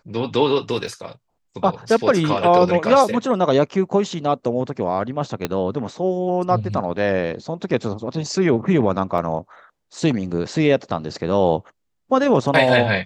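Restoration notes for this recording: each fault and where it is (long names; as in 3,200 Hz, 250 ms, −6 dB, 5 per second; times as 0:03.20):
0:00.87: drop-out 2.3 ms
0:05.45: click −7 dBFS
0:09.18: drop-out 2.5 ms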